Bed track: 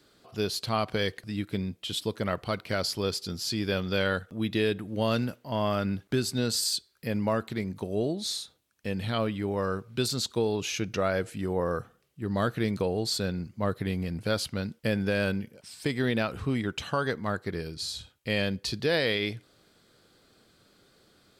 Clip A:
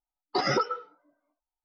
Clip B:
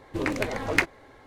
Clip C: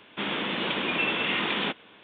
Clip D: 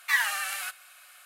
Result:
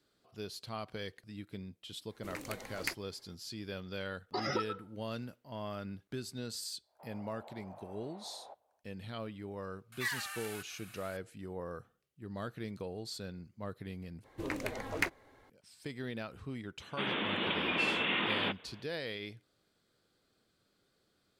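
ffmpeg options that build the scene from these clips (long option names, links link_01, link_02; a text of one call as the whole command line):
ffmpeg -i bed.wav -i cue0.wav -i cue1.wav -i cue2.wav -i cue3.wav -filter_complex "[2:a]asplit=2[link_01][link_02];[3:a]asplit=2[link_03][link_04];[0:a]volume=-13.5dB[link_05];[link_01]aemphasis=mode=production:type=75fm[link_06];[link_03]asuperpass=centerf=700:order=4:qfactor=2.5[link_07];[4:a]acompressor=mode=upward:threshold=-33dB:ratio=2.5:attack=3.2:release=140:knee=2.83:detection=peak[link_08];[link_02]highshelf=frequency=12000:gain=11[link_09];[link_05]asplit=2[link_10][link_11];[link_10]atrim=end=14.244[link_12];[link_09]atrim=end=1.26,asetpts=PTS-STARTPTS,volume=-10dB[link_13];[link_11]atrim=start=15.496[link_14];[link_06]atrim=end=1.26,asetpts=PTS-STARTPTS,volume=-17.5dB,afade=type=in:duration=0.004:curve=hsin,afade=type=out:start_time=1.256:duration=0.004:curve=hsin,adelay=2090[link_15];[1:a]atrim=end=1.64,asetpts=PTS-STARTPTS,volume=-9.5dB,afade=type=in:duration=0.004:curve=hsin,afade=type=out:start_time=1.636:duration=0.004:curve=hsin,adelay=3990[link_16];[link_07]atrim=end=2.03,asetpts=PTS-STARTPTS,volume=-12dB,afade=type=in:duration=0.1,afade=type=out:start_time=1.93:duration=0.1,adelay=300762S[link_17];[link_08]atrim=end=1.25,asetpts=PTS-STARTPTS,volume=-12dB,afade=type=in:duration=0.004:curve=hsin,afade=type=out:start_time=1.246:duration=0.004:curve=hsin,adelay=9920[link_18];[link_04]atrim=end=2.03,asetpts=PTS-STARTPTS,volume=-5dB,afade=type=in:duration=0.004:curve=hsin,afade=type=out:start_time=2.026:duration=0.004:curve=hsin,adelay=16800[link_19];[link_12][link_13]acrossfade=duration=0.004:curve1=hsin:curve2=hsin[link_20];[link_20][link_14]acrossfade=duration=0.004:curve1=hsin:curve2=hsin[link_21];[link_21][link_15][link_16][link_17][link_18][link_19]amix=inputs=6:normalize=0" out.wav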